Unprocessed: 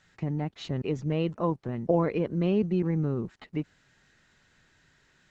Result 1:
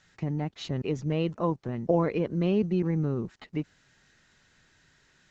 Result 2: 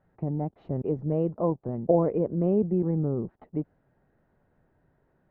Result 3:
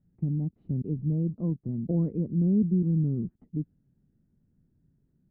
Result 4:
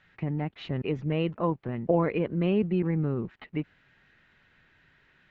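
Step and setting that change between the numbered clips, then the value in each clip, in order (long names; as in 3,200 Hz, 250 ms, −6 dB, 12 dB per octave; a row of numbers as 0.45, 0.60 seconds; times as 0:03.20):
low-pass with resonance, frequency: 6,700, 690, 220, 2,600 Hertz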